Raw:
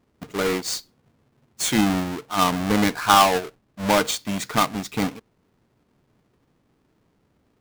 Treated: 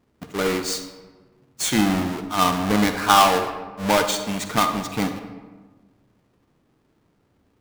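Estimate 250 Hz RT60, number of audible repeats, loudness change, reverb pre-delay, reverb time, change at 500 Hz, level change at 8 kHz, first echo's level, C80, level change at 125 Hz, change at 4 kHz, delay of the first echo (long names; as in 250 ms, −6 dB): 1.6 s, no echo audible, +0.5 dB, 40 ms, 1.4 s, +1.0 dB, +0.5 dB, no echo audible, 9.5 dB, +0.5 dB, +0.5 dB, no echo audible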